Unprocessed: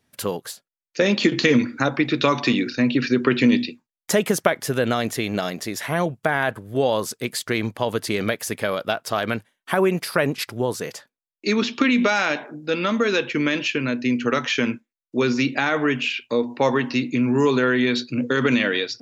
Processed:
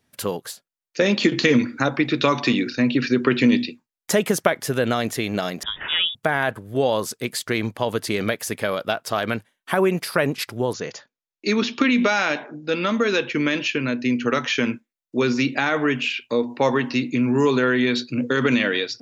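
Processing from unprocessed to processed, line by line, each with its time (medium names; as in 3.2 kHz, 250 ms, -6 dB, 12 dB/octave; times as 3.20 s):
5.63–6.15 s: frequency inversion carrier 3.6 kHz
10.73–14.59 s: brick-wall FIR low-pass 7.2 kHz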